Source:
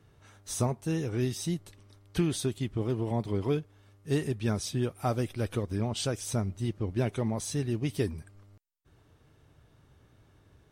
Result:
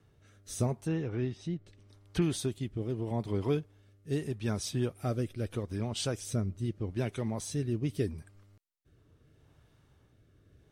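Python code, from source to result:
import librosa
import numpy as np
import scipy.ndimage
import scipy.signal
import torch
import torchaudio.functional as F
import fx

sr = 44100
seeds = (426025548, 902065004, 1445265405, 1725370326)

y = fx.env_lowpass_down(x, sr, base_hz=2700.0, full_db=-28.5, at=(0.83, 2.22))
y = fx.rotary(y, sr, hz=0.8)
y = y * librosa.db_to_amplitude(-1.0)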